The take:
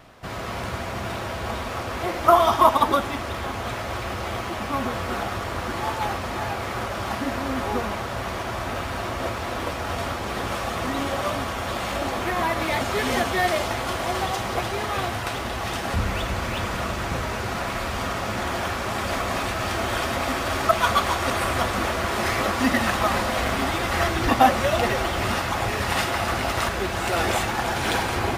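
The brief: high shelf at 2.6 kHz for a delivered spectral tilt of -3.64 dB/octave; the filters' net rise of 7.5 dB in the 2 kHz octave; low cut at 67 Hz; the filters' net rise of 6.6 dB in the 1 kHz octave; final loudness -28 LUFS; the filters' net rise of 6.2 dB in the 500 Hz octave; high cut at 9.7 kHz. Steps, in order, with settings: high-pass 67 Hz; low-pass 9.7 kHz; peaking EQ 500 Hz +6 dB; peaking EQ 1 kHz +4.5 dB; peaking EQ 2 kHz +6 dB; treble shelf 2.6 kHz +3.5 dB; trim -9.5 dB

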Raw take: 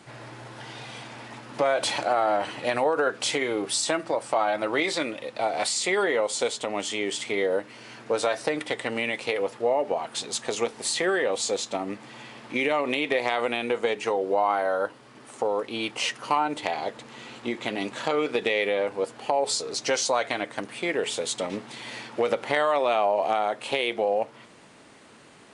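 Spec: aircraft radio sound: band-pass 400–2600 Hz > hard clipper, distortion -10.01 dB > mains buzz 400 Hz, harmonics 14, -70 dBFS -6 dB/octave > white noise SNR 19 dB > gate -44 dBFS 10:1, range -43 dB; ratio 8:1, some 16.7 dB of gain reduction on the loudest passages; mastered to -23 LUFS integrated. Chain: compression 8:1, threshold -37 dBFS; band-pass 400–2600 Hz; hard clipper -39.5 dBFS; mains buzz 400 Hz, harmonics 14, -70 dBFS -6 dB/octave; white noise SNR 19 dB; gate -44 dBFS 10:1, range -43 dB; trim +22.5 dB

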